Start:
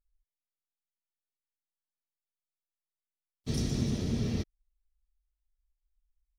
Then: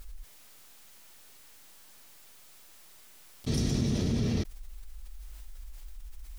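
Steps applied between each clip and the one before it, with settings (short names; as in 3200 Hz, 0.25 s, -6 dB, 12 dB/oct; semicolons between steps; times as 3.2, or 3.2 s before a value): fast leveller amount 70%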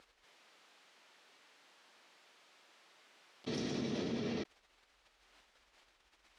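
BPF 320–3600 Hz; gain -1.5 dB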